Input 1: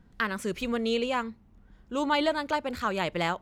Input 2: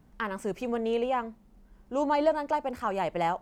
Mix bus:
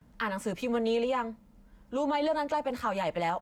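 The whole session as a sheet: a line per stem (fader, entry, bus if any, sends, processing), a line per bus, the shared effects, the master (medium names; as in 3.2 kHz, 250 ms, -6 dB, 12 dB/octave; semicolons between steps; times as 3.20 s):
-6.5 dB, 0.00 s, no send, high-pass 1 kHz
+2.0 dB, 12 ms, polarity flipped, no send, comb of notches 380 Hz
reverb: none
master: peak limiter -21 dBFS, peak gain reduction 9 dB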